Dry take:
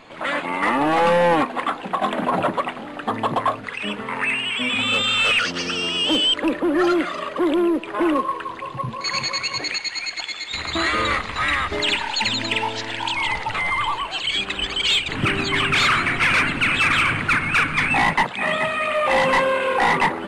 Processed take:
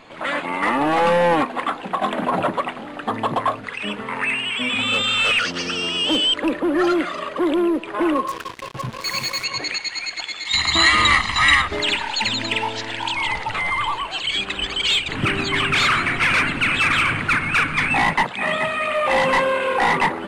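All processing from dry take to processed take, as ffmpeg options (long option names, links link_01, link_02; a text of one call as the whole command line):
ffmpeg -i in.wav -filter_complex "[0:a]asettb=1/sr,asplit=3[link_01][link_02][link_03];[link_01]atrim=end=8.274[link_04];[link_02]atrim=start=8.27:end=9.44,asetpts=PTS-STARTPTS,afade=type=in:duration=0.004:curve=qsin,afade=type=out:start_time=1.166:duration=0.004:curve=qsin,equalizer=frequency=1000:width_type=o:width=1.4:gain=-3,acrusher=bits=4:mix=0:aa=0.5[link_05];[link_03]atrim=start=9.436[link_06];[link_04][link_05]acrossfade=duration=0.004:curve1=hsin:curve2=qsin[link_07];[link_07][link_06]acrossfade=duration=0.004:curve1=qsin:curve2=hsin,asettb=1/sr,asplit=3[link_08][link_09][link_10];[link_08]atrim=end=10.454[link_11];[link_09]atrim=start=10.45:end=11.62,asetpts=PTS-STARTPTS,afade=type=in:duration=0.004:curve=qsin,afade=type=out:start_time=1.166:duration=0.004:curve=qsin,lowpass=10000,highshelf=frequency=2100:gain=9.5,aecho=1:1:1:0.66,atrim=end_sample=51597[link_12];[link_10]atrim=start=11.616[link_13];[link_11][link_12]acrossfade=duration=0.004:curve1=hsin:curve2=qsin[link_14];[link_14][link_13]acrossfade=duration=0.004:curve1=qsin:curve2=hsin" out.wav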